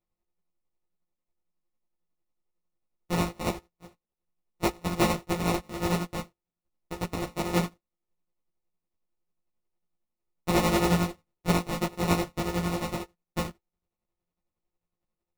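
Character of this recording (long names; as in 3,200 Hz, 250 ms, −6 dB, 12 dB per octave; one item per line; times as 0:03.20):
a buzz of ramps at a fixed pitch in blocks of 256 samples
tremolo triangle 11 Hz, depth 70%
aliases and images of a low sample rate 1,600 Hz, jitter 0%
a shimmering, thickened sound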